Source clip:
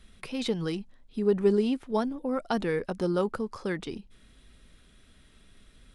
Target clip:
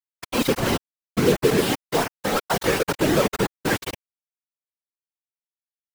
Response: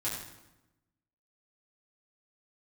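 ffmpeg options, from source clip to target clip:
-filter_complex "[0:a]asettb=1/sr,asplit=3[a][b][c];[a]atrim=end=1.464[d];[b]atrim=start=1.46:end=2.66,asetpts=PTS-STARTPTS,afade=t=in:d=0.004:c=qsin,afade=t=out:st=1.196:d=0.004:c=qsin,aemphasis=mode=production:type=bsi[e];[c]atrim=start=2.656[f];[d][e]acrossfade=d=0.004:c1=hsin:c2=qsin[g];[g][f]acrossfade=d=0.004:c1=qsin:c2=hsin,bandreject=f=94.3:t=h:w=4,bandreject=f=188.6:t=h:w=4,bandreject=f=282.9:t=h:w=4,bandreject=f=377.2:t=h:w=4,bandreject=f=471.5:t=h:w=4,bandreject=f=565.8:t=h:w=4,bandreject=f=660.1:t=h:w=4,bandreject=f=754.4:t=h:w=4,bandreject=f=848.7:t=h:w=4,bandreject=f=943:t=h:w=4,bandreject=f=1.0373k:t=h:w=4,bandreject=f=1.1316k:t=h:w=4,bandreject=f=1.2259k:t=h:w=4,bandreject=f=1.3202k:t=h:w=4,bandreject=f=1.4145k:t=h:w=4,bandreject=f=1.5088k:t=h:w=4,bandreject=f=1.6031k:t=h:w=4,asplit=2[h][i];[i]alimiter=limit=-19.5dB:level=0:latency=1:release=277,volume=0.5dB[j];[h][j]amix=inputs=2:normalize=0,acrusher=bits=3:mix=0:aa=0.000001,afftfilt=real='hypot(re,im)*cos(2*PI*random(0))':imag='hypot(re,im)*sin(2*PI*random(1))':win_size=512:overlap=0.75,acrossover=split=2800[k][l];[l]asoftclip=type=hard:threshold=-35.5dB[m];[k][m]amix=inputs=2:normalize=0,volume=7.5dB"

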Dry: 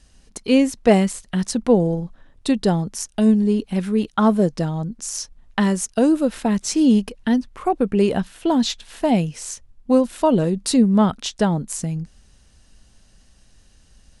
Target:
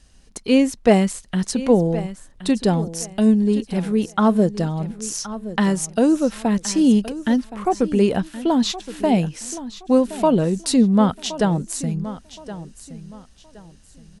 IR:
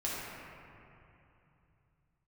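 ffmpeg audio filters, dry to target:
-af "aecho=1:1:1070|2140|3210:0.188|0.0527|0.0148"

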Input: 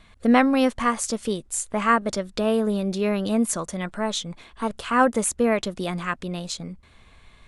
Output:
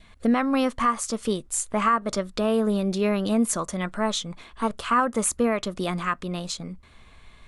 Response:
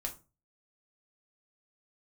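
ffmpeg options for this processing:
-filter_complex "[0:a]asplit=2[a][b];[1:a]atrim=start_sample=2205,atrim=end_sample=6174,asetrate=79380,aresample=44100[c];[b][c]afir=irnorm=-1:irlink=0,volume=-15dB[d];[a][d]amix=inputs=2:normalize=0,adynamicequalizer=threshold=0.0126:dfrequency=1200:dqfactor=3.9:tfrequency=1200:tqfactor=3.9:attack=5:release=100:ratio=0.375:range=4:mode=boostabove:tftype=bell,alimiter=limit=-12.5dB:level=0:latency=1:release=259"

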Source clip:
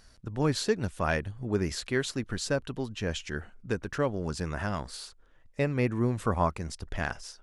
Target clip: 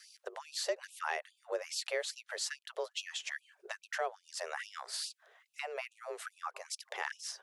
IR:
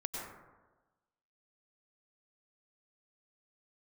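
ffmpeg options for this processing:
-filter_complex "[0:a]afreqshift=160,adynamicequalizer=threshold=0.00794:dfrequency=310:dqfactor=1.5:tfrequency=310:tqfactor=1.5:attack=5:release=100:ratio=0.375:range=3:mode=cutabove:tftype=bell,acompressor=threshold=-40dB:ratio=3,asplit=3[a][b][c];[a]afade=t=out:st=6.54:d=0.02[d];[b]bandreject=f=134:t=h:w=4,bandreject=f=268:t=h:w=4,bandreject=f=402:t=h:w=4,bandreject=f=536:t=h:w=4,bandreject=f=670:t=h:w=4,bandreject=f=804:t=h:w=4,bandreject=f=938:t=h:w=4,bandreject=f=1.072k:t=h:w=4,bandreject=f=1.206k:t=h:w=4,afade=t=in:st=6.54:d=0.02,afade=t=out:st=7.02:d=0.02[e];[c]afade=t=in:st=7.02:d=0.02[f];[d][e][f]amix=inputs=3:normalize=0,afftfilt=real='re*gte(b*sr/1024,350*pow(2500/350,0.5+0.5*sin(2*PI*2.4*pts/sr)))':imag='im*gte(b*sr/1024,350*pow(2500/350,0.5+0.5*sin(2*PI*2.4*pts/sr)))':win_size=1024:overlap=0.75,volume=5.5dB"

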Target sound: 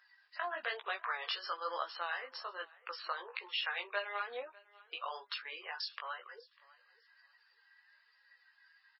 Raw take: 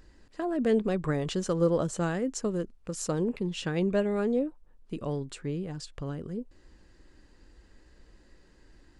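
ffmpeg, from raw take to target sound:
-filter_complex "[0:a]highpass=f=970:w=0.5412,highpass=f=970:w=1.3066,asettb=1/sr,asplit=3[a][b][c];[a]atrim=end=2.484[d];[b]atrim=start=2.48:end=5.29,asetpts=PTS-STARTPTS,afade=t=in:d=0.004:c=qsin,afade=t=out:st=2.806:d=0.004:c=qsin,acrossover=split=3900[e][f];[f]acompressor=threshold=-51dB:ratio=4:attack=1:release=60[g];[e][g]amix=inputs=2:normalize=0[h];[c]atrim=start=5.286[i];[d][h]acrossfade=d=0.004:c1=hsin:c2=qsin[j];[j][i]acrossfade=d=0.004:c1=qsin:c2=hsin,afftdn=nr=17:nf=-58,acompressor=threshold=-51dB:ratio=2.5,flanger=delay=15:depth=5.2:speed=1.1,aecho=1:1:598|1196:0.0708|0.0163,volume=16dB" -ar 16000 -c:a libmp3lame -b:a 16k

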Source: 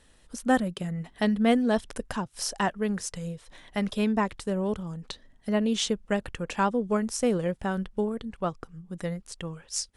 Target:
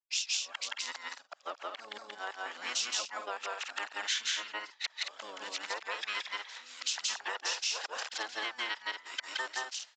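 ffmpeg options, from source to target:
-filter_complex "[0:a]areverse,highpass=f=1.1k:w=0.5412,highpass=f=1.1k:w=1.3066,aecho=1:1:172|221.6:0.891|0.398,asplit=3[a][b][c];[b]asetrate=22050,aresample=44100,atempo=2,volume=-1dB[d];[c]asetrate=29433,aresample=44100,atempo=1.49831,volume=-7dB[e];[a][d][e]amix=inputs=3:normalize=0,aresample=16000,aresample=44100,acompressor=threshold=-34dB:ratio=6,agate=range=-33dB:threshold=-49dB:ratio=3:detection=peak,adynamicequalizer=threshold=0.00224:dfrequency=1700:dqfactor=0.7:tfrequency=1700:tqfactor=0.7:attack=5:release=100:ratio=0.375:range=4:mode=boostabove:tftype=highshelf,volume=-3dB"

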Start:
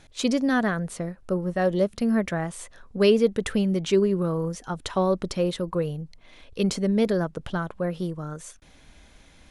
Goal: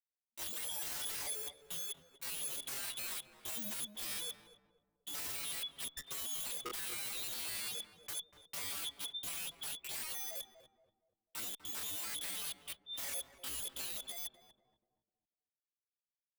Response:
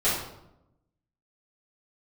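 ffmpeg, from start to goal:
-filter_complex "[0:a]bandreject=f=530:w=12,afftdn=nr=21:nf=-47,afftfilt=real='re*gte(hypot(re,im),0.2)':imag='im*gte(hypot(re,im),0.2)':win_size=1024:overlap=0.75,agate=range=-53dB:threshold=-41dB:ratio=16:detection=peak,highshelf=f=1.6k:t=q:w=1.5:g=12.5,acompressor=threshold=-31dB:ratio=4,lowpass=f=3.1k:t=q:w=0.5098,lowpass=f=3.1k:t=q:w=0.6013,lowpass=f=3.1k:t=q:w=0.9,lowpass=f=3.1k:t=q:w=2.563,afreqshift=-3600,aeval=exprs='(mod(75*val(0)+1,2)-1)/75':c=same,asplit=2[a][b];[b]adelay=141,lowpass=f=900:p=1,volume=-8dB,asplit=2[c][d];[d]adelay=141,lowpass=f=900:p=1,volume=0.41,asplit=2[e][f];[f]adelay=141,lowpass=f=900:p=1,volume=0.41,asplit=2[g][h];[h]adelay=141,lowpass=f=900:p=1,volume=0.41,asplit=2[i][j];[j]adelay=141,lowpass=f=900:p=1,volume=0.41[k];[c][e][g][i][k]amix=inputs=5:normalize=0[l];[a][l]amix=inputs=2:normalize=0,atempo=0.58,asplit=2[m][n];[n]adelay=6,afreqshift=-0.27[o];[m][o]amix=inputs=2:normalize=1,volume=4.5dB"

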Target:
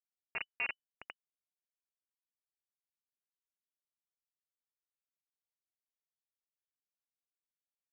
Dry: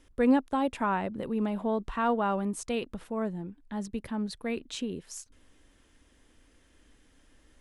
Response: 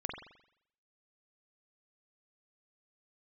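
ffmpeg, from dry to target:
-filter_complex "[0:a]acrossover=split=750[a][b];[a]aeval=exprs='val(0)*(1-1/2+1/2*cos(2*PI*2*n/s))':c=same[c];[b]aeval=exprs='val(0)*(1-1/2-1/2*cos(2*PI*2*n/s))':c=same[d];[c][d]amix=inputs=2:normalize=0,asetrate=42336,aresample=44100,aecho=1:1:4.6:0.39,aeval=exprs='(tanh(63.1*val(0)+0.45)-tanh(0.45))/63.1':c=same,asplit=3[e][f][g];[e]bandpass=f=300:t=q:w=8,volume=0dB[h];[f]bandpass=f=870:t=q:w=8,volume=-6dB[i];[g]bandpass=f=2.24k:t=q:w=8,volume=-9dB[j];[h][i][j]amix=inputs=3:normalize=0,bandreject=f=113.3:t=h:w=4,bandreject=f=226.6:t=h:w=4,bandreject=f=339.9:t=h:w=4,bandreject=f=453.2:t=h:w=4[k];[1:a]atrim=start_sample=2205,afade=t=out:st=0.2:d=0.01,atrim=end_sample=9261[l];[k][l]afir=irnorm=-1:irlink=0,acrusher=bits=4:dc=4:mix=0:aa=0.000001,highpass=64,lowpass=f=2.6k:t=q:w=0.5098,lowpass=f=2.6k:t=q:w=0.6013,lowpass=f=2.6k:t=q:w=0.9,lowpass=f=2.6k:t=q:w=2.563,afreqshift=-3000,volume=10.5dB"

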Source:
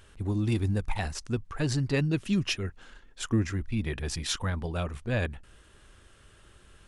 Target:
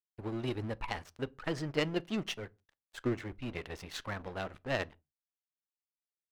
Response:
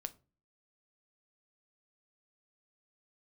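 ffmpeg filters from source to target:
-filter_complex "[0:a]aemphasis=mode=reproduction:type=50fm,aeval=exprs='sgn(val(0))*max(abs(val(0))-0.00841,0)':c=same,bass=f=250:g=-10,treble=f=4k:g=-3,aeval=exprs='0.126*(cos(1*acos(clip(val(0)/0.126,-1,1)))-cos(1*PI/2))+0.0224*(cos(3*acos(clip(val(0)/0.126,-1,1)))-cos(3*PI/2))':c=same,asplit=2[a][b];[1:a]atrim=start_sample=2205,afade=t=out:st=0.25:d=0.01,atrim=end_sample=11466,highshelf=f=5.3k:g=-9[c];[b][c]afir=irnorm=-1:irlink=0,volume=-1.5dB[d];[a][d]amix=inputs=2:normalize=0,asetrate=48000,aresample=44100"

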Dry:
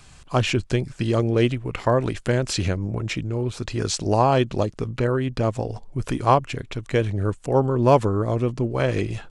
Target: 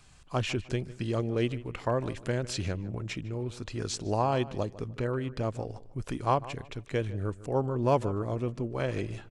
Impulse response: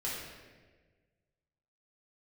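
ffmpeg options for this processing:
-filter_complex "[0:a]asplit=2[a][b];[b]adelay=152,lowpass=f=2.8k:p=1,volume=-17dB,asplit=2[c][d];[d]adelay=152,lowpass=f=2.8k:p=1,volume=0.3,asplit=2[e][f];[f]adelay=152,lowpass=f=2.8k:p=1,volume=0.3[g];[a][c][e][g]amix=inputs=4:normalize=0,volume=-9dB"

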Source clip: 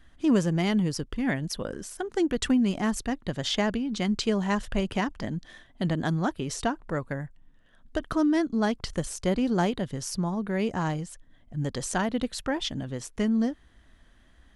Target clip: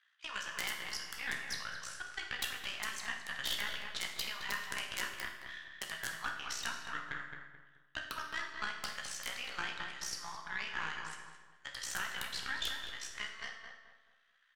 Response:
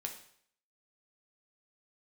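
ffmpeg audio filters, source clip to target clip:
-filter_complex "[0:a]highpass=f=1.3k:w=0.5412,highpass=f=1.3k:w=1.3066,agate=range=-9dB:threshold=-57dB:ratio=16:detection=peak,lowpass=4.6k,acompressor=threshold=-41dB:ratio=2.5,aeval=exprs='(tanh(35.5*val(0)+0.7)-tanh(0.7))/35.5':c=same,aeval=exprs='(mod(33.5*val(0)+1,2)-1)/33.5':c=same,tremolo=f=61:d=0.75,asplit=2[a][b];[b]adelay=216,lowpass=f=1.8k:p=1,volume=-4dB,asplit=2[c][d];[d]adelay=216,lowpass=f=1.8k:p=1,volume=0.37,asplit=2[e][f];[f]adelay=216,lowpass=f=1.8k:p=1,volume=0.37,asplit=2[g][h];[h]adelay=216,lowpass=f=1.8k:p=1,volume=0.37,asplit=2[i][j];[j]adelay=216,lowpass=f=1.8k:p=1,volume=0.37[k];[a][c][e][g][i][k]amix=inputs=6:normalize=0[l];[1:a]atrim=start_sample=2205,asetrate=31752,aresample=44100[m];[l][m]afir=irnorm=-1:irlink=0,volume=10dB"

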